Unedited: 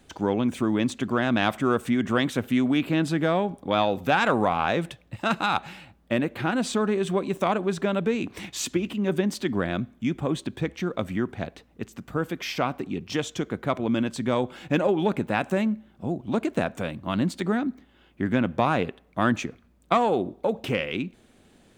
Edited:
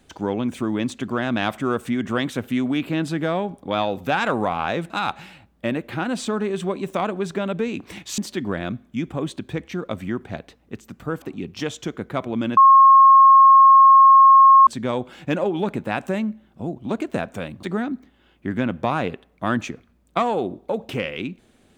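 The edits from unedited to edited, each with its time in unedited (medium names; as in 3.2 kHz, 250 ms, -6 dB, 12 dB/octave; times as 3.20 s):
4.90–5.37 s: delete
8.65–9.26 s: delete
12.30–12.75 s: delete
14.10 s: add tone 1.08 kHz -7 dBFS 2.10 s
17.06–17.38 s: delete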